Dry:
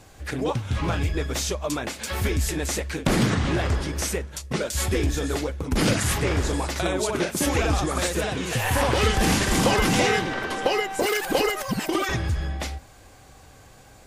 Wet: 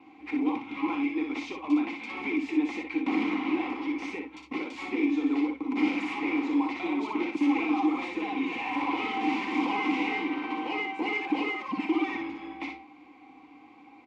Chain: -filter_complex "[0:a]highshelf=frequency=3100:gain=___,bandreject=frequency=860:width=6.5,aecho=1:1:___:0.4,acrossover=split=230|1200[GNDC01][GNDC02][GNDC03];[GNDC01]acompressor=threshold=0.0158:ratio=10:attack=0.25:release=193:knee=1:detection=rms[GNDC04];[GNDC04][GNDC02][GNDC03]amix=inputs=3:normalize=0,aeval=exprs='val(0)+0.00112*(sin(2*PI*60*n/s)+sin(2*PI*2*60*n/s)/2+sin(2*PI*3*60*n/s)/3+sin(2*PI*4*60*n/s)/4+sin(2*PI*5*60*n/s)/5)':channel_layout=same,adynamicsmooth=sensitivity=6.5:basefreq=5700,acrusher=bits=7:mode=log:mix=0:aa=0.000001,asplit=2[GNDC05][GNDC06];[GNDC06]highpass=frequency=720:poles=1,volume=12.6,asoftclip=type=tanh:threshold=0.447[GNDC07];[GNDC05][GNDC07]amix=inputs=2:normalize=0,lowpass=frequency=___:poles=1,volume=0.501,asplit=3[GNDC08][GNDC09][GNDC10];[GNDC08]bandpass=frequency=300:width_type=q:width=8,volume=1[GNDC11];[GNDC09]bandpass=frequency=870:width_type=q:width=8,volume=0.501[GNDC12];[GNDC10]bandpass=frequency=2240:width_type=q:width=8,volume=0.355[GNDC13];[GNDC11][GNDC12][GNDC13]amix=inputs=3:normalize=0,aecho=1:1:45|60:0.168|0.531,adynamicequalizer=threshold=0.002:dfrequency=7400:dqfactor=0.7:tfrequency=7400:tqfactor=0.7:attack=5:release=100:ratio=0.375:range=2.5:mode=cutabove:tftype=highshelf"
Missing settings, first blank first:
-4.5, 3.8, 4000